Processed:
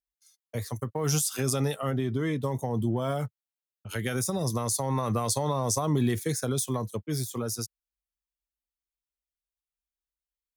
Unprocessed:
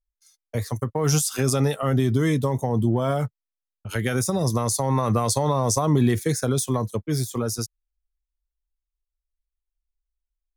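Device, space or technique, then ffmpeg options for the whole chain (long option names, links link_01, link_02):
presence and air boost: -filter_complex "[0:a]highpass=71,equalizer=frequency=3200:width_type=o:width=0.77:gain=2.5,highshelf=frequency=9400:gain=6,asplit=3[link_01][link_02][link_03];[link_01]afade=type=out:start_time=1.9:duration=0.02[link_04];[link_02]bass=frequency=250:gain=-3,treble=frequency=4000:gain=-13,afade=type=in:start_time=1.9:duration=0.02,afade=type=out:start_time=2.43:duration=0.02[link_05];[link_03]afade=type=in:start_time=2.43:duration=0.02[link_06];[link_04][link_05][link_06]amix=inputs=3:normalize=0,volume=-6dB"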